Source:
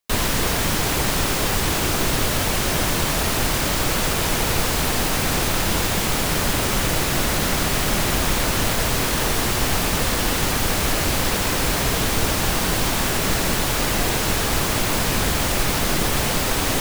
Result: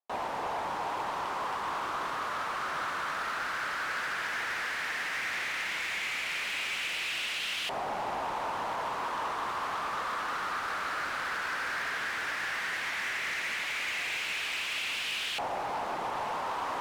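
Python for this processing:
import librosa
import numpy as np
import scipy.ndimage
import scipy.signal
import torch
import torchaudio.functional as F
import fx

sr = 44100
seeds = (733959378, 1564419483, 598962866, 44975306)

y = fx.filter_lfo_bandpass(x, sr, shape='saw_up', hz=0.13, low_hz=790.0, high_hz=2900.0, q=3.1)
y = np.clip(y, -10.0 ** (-29.0 / 20.0), 10.0 ** (-29.0 / 20.0))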